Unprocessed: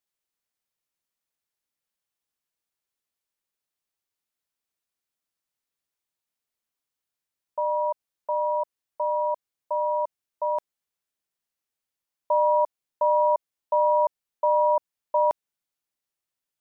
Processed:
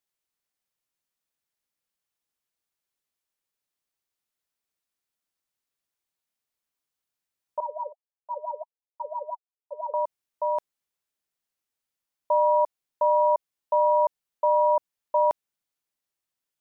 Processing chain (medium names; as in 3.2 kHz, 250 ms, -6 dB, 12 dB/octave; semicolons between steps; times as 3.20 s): 7.60–9.94 s: wah-wah 5.9 Hz 420–1000 Hz, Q 12